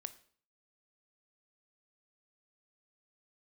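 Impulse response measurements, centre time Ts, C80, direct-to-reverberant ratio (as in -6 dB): 4 ms, 20.0 dB, 12.0 dB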